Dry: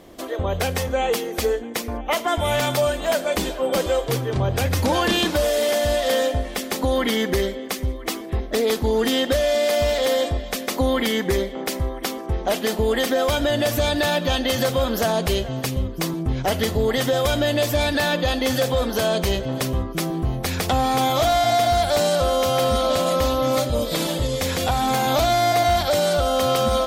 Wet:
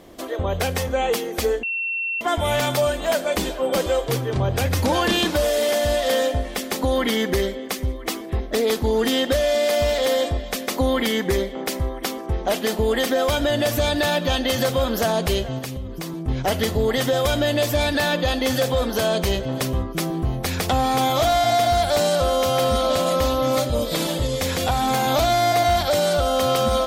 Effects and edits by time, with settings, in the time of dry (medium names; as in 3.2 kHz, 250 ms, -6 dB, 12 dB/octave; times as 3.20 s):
1.63–2.21 s: bleep 2.71 kHz -22.5 dBFS
15.58–16.28 s: compression 4:1, threshold -27 dBFS